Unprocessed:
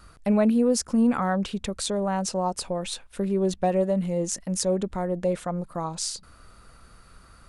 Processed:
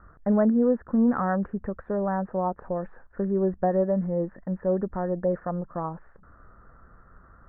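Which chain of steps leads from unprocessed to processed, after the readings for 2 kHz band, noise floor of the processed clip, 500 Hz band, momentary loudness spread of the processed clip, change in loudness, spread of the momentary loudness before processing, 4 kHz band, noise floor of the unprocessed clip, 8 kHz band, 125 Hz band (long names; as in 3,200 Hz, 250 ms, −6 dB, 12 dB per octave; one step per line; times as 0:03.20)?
−2.0 dB, −55 dBFS, 0.0 dB, 11 LU, −0.5 dB, 9 LU, below −40 dB, −53 dBFS, below −40 dB, −0.5 dB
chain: Chebyshev low-pass filter 1,800 Hz, order 6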